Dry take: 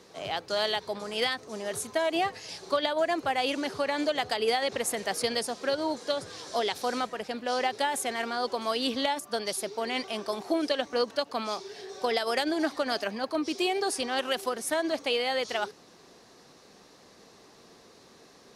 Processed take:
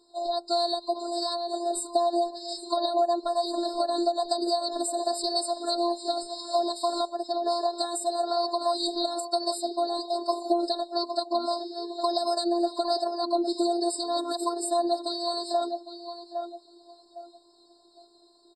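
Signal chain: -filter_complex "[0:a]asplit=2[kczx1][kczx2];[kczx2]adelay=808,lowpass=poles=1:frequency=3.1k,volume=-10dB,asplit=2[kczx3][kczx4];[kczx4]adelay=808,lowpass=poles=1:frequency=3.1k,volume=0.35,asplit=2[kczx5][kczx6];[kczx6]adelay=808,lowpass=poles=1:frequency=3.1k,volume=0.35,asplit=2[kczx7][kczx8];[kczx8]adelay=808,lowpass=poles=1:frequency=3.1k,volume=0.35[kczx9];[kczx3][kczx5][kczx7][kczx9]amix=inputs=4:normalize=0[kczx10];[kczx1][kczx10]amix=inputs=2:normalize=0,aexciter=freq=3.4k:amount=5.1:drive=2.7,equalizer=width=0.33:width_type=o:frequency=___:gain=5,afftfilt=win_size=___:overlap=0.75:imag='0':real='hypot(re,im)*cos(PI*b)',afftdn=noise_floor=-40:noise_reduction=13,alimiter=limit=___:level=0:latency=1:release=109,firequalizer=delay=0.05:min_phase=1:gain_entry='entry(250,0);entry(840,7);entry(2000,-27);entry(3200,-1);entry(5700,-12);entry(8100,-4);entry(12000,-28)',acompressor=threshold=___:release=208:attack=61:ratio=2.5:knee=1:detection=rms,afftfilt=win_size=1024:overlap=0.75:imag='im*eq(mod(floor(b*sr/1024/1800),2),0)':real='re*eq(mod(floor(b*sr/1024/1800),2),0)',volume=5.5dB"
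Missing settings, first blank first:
2.9k, 512, -8.5dB, -31dB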